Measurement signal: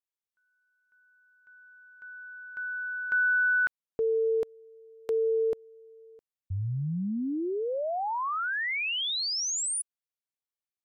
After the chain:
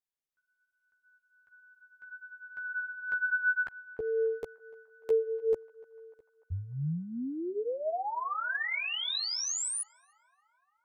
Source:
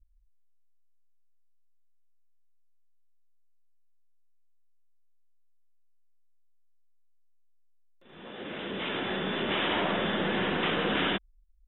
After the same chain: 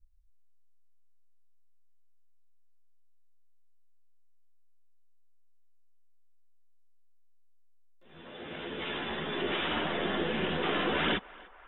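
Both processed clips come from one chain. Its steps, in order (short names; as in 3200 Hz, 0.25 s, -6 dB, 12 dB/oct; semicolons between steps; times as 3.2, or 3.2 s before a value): dynamic EQ 120 Hz, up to -5 dB, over -51 dBFS, Q 2.7; chorus voices 6, 0.75 Hz, delay 13 ms, depth 1.5 ms; narrowing echo 0.296 s, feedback 71%, band-pass 1100 Hz, level -20 dB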